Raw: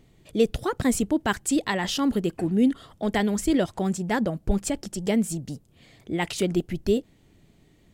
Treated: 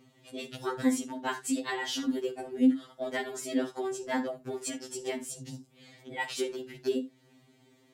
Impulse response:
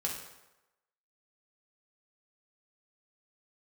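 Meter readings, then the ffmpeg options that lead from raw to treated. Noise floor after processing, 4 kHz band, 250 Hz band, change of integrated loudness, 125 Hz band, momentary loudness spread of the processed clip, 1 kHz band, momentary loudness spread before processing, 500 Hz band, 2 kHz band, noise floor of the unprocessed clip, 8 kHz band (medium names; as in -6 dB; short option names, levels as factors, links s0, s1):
-64 dBFS, -5.5 dB, -7.0 dB, -7.0 dB, -18.5 dB, 14 LU, -6.5 dB, 7 LU, -7.0 dB, -5.5 dB, -59 dBFS, -6.0 dB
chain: -filter_complex "[0:a]highpass=210,acompressor=threshold=0.0112:ratio=1.5,asplit=2[s0][s1];[1:a]atrim=start_sample=2205,atrim=end_sample=3969,lowpass=8700[s2];[s1][s2]afir=irnorm=-1:irlink=0,volume=0.473[s3];[s0][s3]amix=inputs=2:normalize=0,afftfilt=real='re*2.45*eq(mod(b,6),0)':imag='im*2.45*eq(mod(b,6),0)':win_size=2048:overlap=0.75"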